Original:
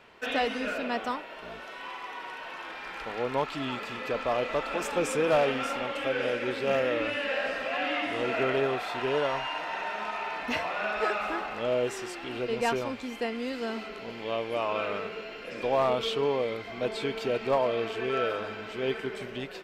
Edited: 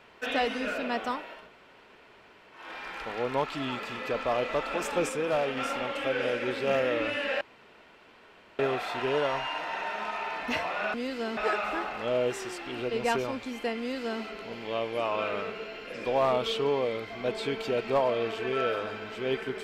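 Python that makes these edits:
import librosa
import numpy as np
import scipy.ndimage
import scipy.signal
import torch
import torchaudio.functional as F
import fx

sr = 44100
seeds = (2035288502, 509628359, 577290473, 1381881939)

y = fx.edit(x, sr, fx.room_tone_fill(start_s=1.41, length_s=1.21, crossfade_s=0.24),
    fx.clip_gain(start_s=5.09, length_s=0.48, db=-4.0),
    fx.room_tone_fill(start_s=7.41, length_s=1.18),
    fx.duplicate(start_s=13.36, length_s=0.43, to_s=10.94), tone=tone)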